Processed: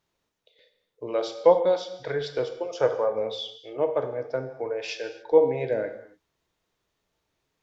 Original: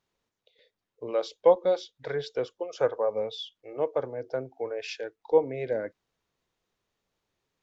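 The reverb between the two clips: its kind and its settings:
reverb whose tail is shaped and stops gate 310 ms falling, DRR 6 dB
level +2.5 dB

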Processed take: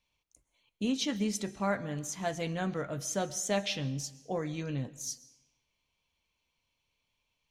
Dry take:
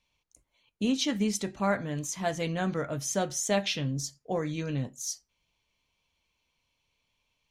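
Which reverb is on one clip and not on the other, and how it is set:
comb and all-pass reverb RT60 0.95 s, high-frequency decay 0.9×, pre-delay 85 ms, DRR 18.5 dB
level −3.5 dB

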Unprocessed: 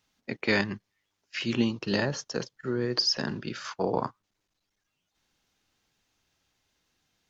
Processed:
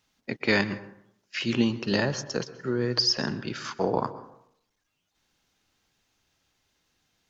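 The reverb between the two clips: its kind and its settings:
dense smooth reverb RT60 0.71 s, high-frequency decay 0.45×, pre-delay 110 ms, DRR 15 dB
level +2 dB

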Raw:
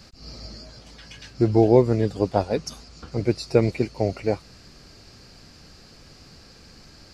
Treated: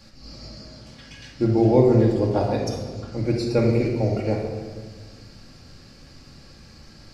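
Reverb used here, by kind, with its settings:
rectangular room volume 1,500 cubic metres, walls mixed, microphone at 2.3 metres
level −4 dB

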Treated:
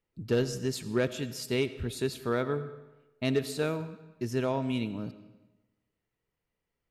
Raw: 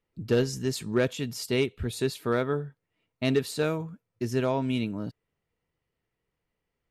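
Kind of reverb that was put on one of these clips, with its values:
comb and all-pass reverb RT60 1.1 s, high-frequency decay 0.85×, pre-delay 45 ms, DRR 13.5 dB
level −3 dB

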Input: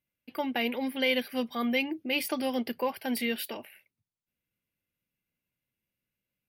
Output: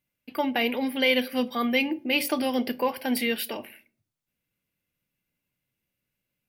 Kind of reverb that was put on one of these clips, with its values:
rectangular room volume 340 cubic metres, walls furnished, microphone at 0.37 metres
level +4.5 dB

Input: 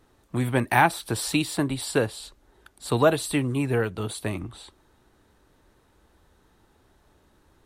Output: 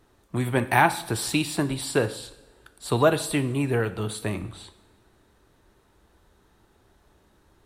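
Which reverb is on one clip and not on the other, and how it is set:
coupled-rooms reverb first 0.68 s, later 2.4 s, from −18 dB, DRR 10.5 dB

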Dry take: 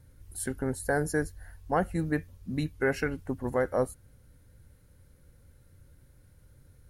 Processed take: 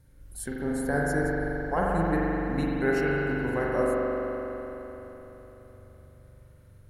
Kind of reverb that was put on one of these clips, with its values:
spring reverb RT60 3.9 s, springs 42 ms, chirp 70 ms, DRR −5 dB
level −2.5 dB

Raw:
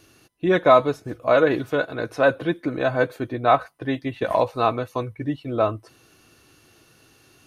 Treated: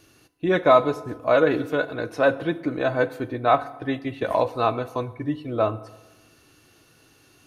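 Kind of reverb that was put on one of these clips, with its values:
feedback delay network reverb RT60 1.1 s, low-frequency decay 0.95×, high-frequency decay 0.65×, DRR 13.5 dB
level −1.5 dB

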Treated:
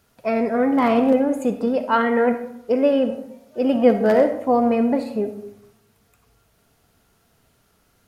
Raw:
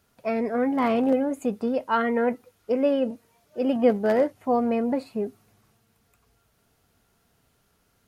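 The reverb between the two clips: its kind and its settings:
comb and all-pass reverb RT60 0.78 s, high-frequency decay 0.5×, pre-delay 15 ms, DRR 8 dB
level +4.5 dB

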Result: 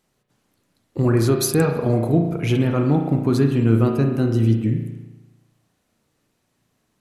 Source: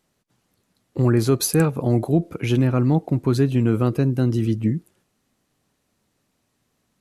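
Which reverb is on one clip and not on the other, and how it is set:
spring reverb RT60 1.1 s, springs 35 ms, chirp 35 ms, DRR 3.5 dB

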